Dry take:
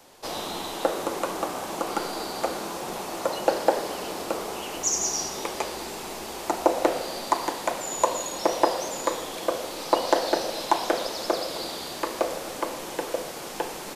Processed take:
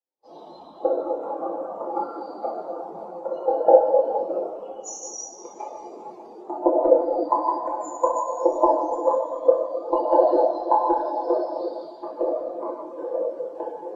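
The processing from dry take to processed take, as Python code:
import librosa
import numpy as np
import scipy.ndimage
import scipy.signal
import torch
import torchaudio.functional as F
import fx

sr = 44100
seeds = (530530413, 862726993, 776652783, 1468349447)

p1 = fx.cheby_harmonics(x, sr, harmonics=(2, 6), levels_db=(-24, -31), full_scale_db=-4.0)
p2 = fx.rider(p1, sr, range_db=10, speed_s=0.5)
p3 = p1 + F.gain(torch.from_numpy(p2), -2.0).numpy()
p4 = fx.dereverb_blind(p3, sr, rt60_s=0.57)
p5 = fx.rev_plate(p4, sr, seeds[0], rt60_s=4.5, hf_ratio=0.65, predelay_ms=0, drr_db=-7.5)
p6 = fx.spectral_expand(p5, sr, expansion=2.5)
y = F.gain(torch.from_numpy(p6), -3.5).numpy()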